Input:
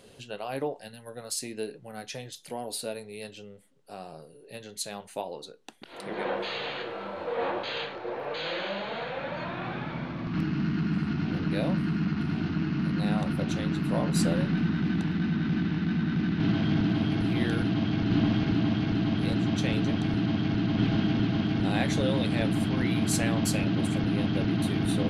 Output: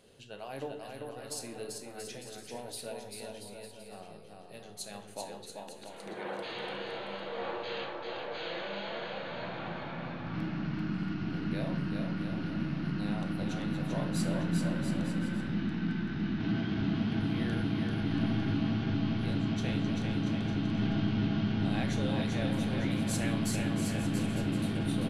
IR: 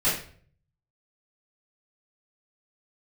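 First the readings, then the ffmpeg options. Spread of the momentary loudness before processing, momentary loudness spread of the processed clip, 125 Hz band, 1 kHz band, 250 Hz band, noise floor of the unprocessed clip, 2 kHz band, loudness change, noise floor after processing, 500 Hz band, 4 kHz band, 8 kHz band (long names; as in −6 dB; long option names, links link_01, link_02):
14 LU, 13 LU, −5.0 dB, −5.0 dB, −5.0 dB, −51 dBFS, −5.0 dB, −5.5 dB, −49 dBFS, −5.5 dB, −5.0 dB, −5.5 dB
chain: -filter_complex "[0:a]aecho=1:1:390|682.5|901.9|1066|1190:0.631|0.398|0.251|0.158|0.1,asplit=2[link_01][link_02];[1:a]atrim=start_sample=2205,asetrate=28665,aresample=44100[link_03];[link_02][link_03]afir=irnorm=-1:irlink=0,volume=-22.5dB[link_04];[link_01][link_04]amix=inputs=2:normalize=0,volume=-8.5dB"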